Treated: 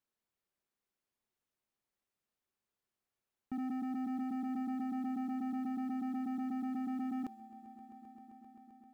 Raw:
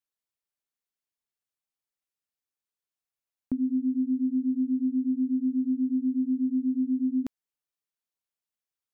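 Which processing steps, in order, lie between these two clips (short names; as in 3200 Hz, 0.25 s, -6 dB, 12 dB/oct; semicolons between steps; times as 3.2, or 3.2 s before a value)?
in parallel at +3 dB: level quantiser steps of 19 dB; on the sum: limiter -24.5 dBFS, peak gain reduction 6.5 dB; vocal rider; soft clip -37.5 dBFS, distortion -9 dB; short-mantissa float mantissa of 4-bit; small resonant body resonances 220/370 Hz, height 6 dB, ringing for 85 ms; on a send: swelling echo 0.131 s, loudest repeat 5, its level -18 dB; on the sum: mismatched tape noise reduction decoder only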